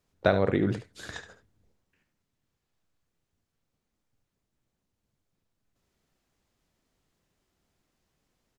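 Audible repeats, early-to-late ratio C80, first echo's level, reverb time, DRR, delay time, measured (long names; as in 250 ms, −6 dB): 1, no reverb audible, −11.0 dB, no reverb audible, no reverb audible, 72 ms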